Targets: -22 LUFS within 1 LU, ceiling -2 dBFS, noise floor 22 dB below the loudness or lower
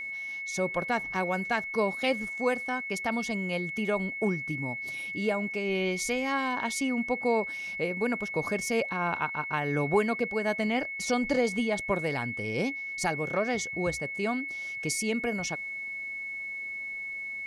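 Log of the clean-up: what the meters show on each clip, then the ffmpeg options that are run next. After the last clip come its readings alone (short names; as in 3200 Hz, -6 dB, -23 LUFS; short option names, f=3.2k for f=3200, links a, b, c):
steady tone 2200 Hz; tone level -34 dBFS; loudness -30.0 LUFS; peak -14.0 dBFS; loudness target -22.0 LUFS
-> -af "bandreject=f=2.2k:w=30"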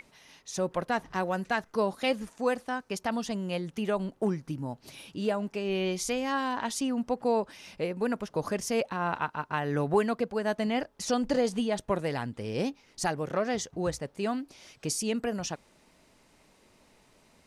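steady tone none; loudness -31.0 LUFS; peak -13.5 dBFS; loudness target -22.0 LUFS
-> -af "volume=9dB"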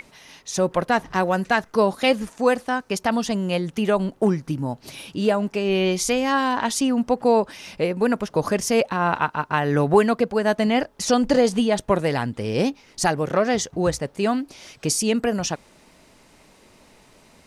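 loudness -22.0 LUFS; peak -4.5 dBFS; noise floor -54 dBFS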